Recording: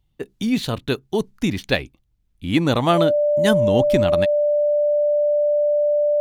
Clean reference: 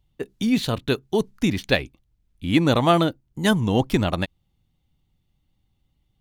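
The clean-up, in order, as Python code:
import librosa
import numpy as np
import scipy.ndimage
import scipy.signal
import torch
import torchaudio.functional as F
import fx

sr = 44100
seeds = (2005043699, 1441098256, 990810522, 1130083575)

y = fx.notch(x, sr, hz=590.0, q=30.0)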